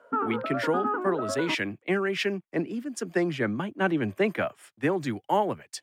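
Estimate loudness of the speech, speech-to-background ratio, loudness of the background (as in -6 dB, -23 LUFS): -29.0 LUFS, 2.0 dB, -31.0 LUFS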